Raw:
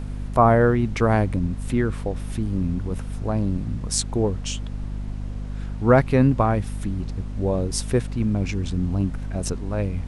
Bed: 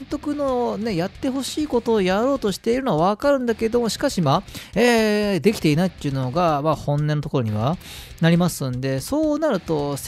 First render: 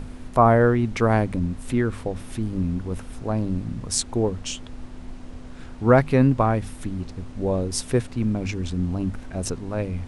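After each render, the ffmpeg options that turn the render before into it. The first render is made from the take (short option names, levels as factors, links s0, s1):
-af "bandreject=f=50:t=h:w=6,bandreject=f=100:t=h:w=6,bandreject=f=150:t=h:w=6,bandreject=f=200:t=h:w=6"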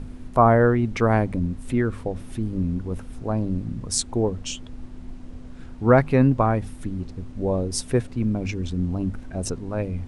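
-af "afftdn=nr=6:nf=-40"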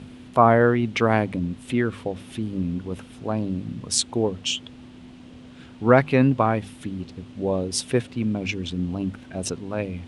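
-af "highpass=120,equalizer=f=3100:w=1.4:g=10"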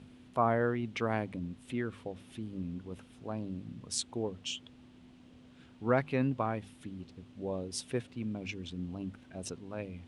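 -af "volume=0.237"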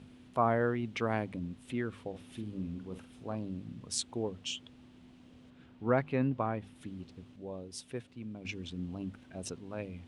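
-filter_complex "[0:a]asettb=1/sr,asplit=3[s0][s1][s2];[s0]atrim=end=2.094[s3];[s1]atrim=start=2.09:end=3.35,asetpts=PTS-STARTPTS,afade=t=in:d=0.004:c=qsin,afade=t=out:st=1.256:d=0.004:c=qsin,asplit=2[s4][s5];[s5]adelay=48,volume=0.355[s6];[s4][s6]amix=inputs=2:normalize=0,atrim=end_sample=55566[s7];[s2]atrim=start=3.346[s8];[s3][s7]acrossfade=d=0.004:c1=hsin:c2=qsin[s9];[s9][s8]acrossfade=d=0.004:c1=qsin:c2=hsin,asettb=1/sr,asplit=3[s10][s11][s12];[s10]atrim=end=5.504[s13];[s11]atrim=start=5.5:end=6.76,asetpts=PTS-STARTPTS,afade=t=in:d=0.004:c=qsin,afade=t=out:st=1.256:d=0.004:c=qsin,highshelf=f=3800:g=-10[s14];[s12]atrim=start=6.756[s15];[s13][s14]acrossfade=d=0.004:c1=hsin:c2=qsin[s16];[s16][s15]acrossfade=d=0.004:c1=qsin:c2=hsin,asplit=3[s17][s18][s19];[s17]atrim=end=7.362[s20];[s18]atrim=start=7.358:end=8.452,asetpts=PTS-STARTPTS,volume=0.501[s21];[s19]atrim=start=8.448[s22];[s20][s21]acrossfade=d=0.004:c1=hsin:c2=hsin[s23];[s23][s22]acrossfade=d=0.004:c1=hsin:c2=hsin"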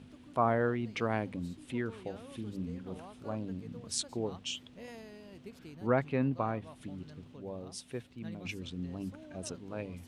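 -filter_complex "[1:a]volume=0.0251[s0];[0:a][s0]amix=inputs=2:normalize=0"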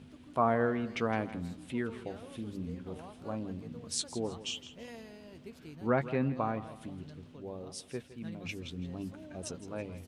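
-filter_complex "[0:a]asplit=2[s0][s1];[s1]adelay=13,volume=0.266[s2];[s0][s2]amix=inputs=2:normalize=0,aecho=1:1:163|326|489:0.178|0.0622|0.0218"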